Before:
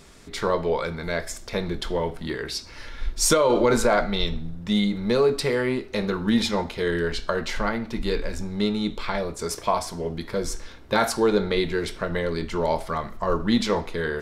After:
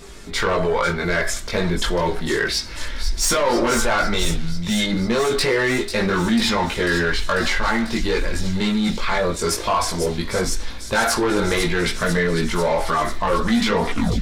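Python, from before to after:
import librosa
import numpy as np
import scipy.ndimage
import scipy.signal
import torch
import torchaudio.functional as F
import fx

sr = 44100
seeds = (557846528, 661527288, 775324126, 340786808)

p1 = fx.tape_stop_end(x, sr, length_s=0.37)
p2 = fx.dynamic_eq(p1, sr, hz=1600.0, q=0.92, threshold_db=-40.0, ratio=4.0, max_db=7)
p3 = 10.0 ** (-18.0 / 20.0) * np.tanh(p2 / 10.0 ** (-18.0 / 20.0))
p4 = fx.chorus_voices(p3, sr, voices=6, hz=0.15, base_ms=20, depth_ms=3.0, mix_pct=50)
p5 = fx.over_compress(p4, sr, threshold_db=-31.0, ratio=-1.0)
p6 = p4 + (p5 * 10.0 ** (-1.0 / 20.0))
p7 = fx.echo_wet_highpass(p6, sr, ms=494, feedback_pct=75, hz=4200.0, wet_db=-7.0)
y = p7 * 10.0 ** (4.5 / 20.0)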